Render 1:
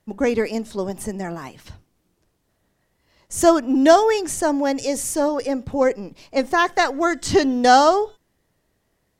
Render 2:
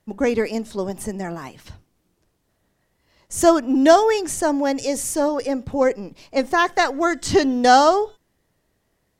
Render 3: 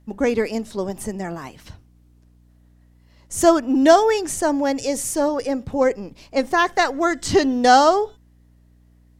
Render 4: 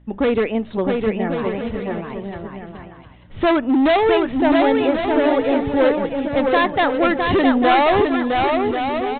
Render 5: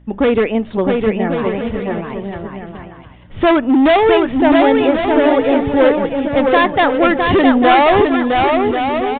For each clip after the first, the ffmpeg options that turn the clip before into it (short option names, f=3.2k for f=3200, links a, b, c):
-af anull
-af "aeval=exprs='val(0)+0.00251*(sin(2*PI*60*n/s)+sin(2*PI*2*60*n/s)/2+sin(2*PI*3*60*n/s)/3+sin(2*PI*4*60*n/s)/4+sin(2*PI*5*60*n/s)/5)':c=same"
-af "aresample=8000,asoftclip=type=hard:threshold=-17dB,aresample=44100,aecho=1:1:660|1089|1368|1549|1667:0.631|0.398|0.251|0.158|0.1,volume=4dB"
-af "aresample=8000,aresample=44100,volume=4.5dB" -ar 48000 -c:a libopus -b:a 96k